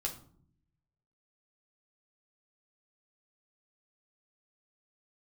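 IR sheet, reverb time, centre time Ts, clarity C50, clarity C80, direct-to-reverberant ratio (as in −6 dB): 0.60 s, 14 ms, 11.0 dB, 16.0 dB, −0.5 dB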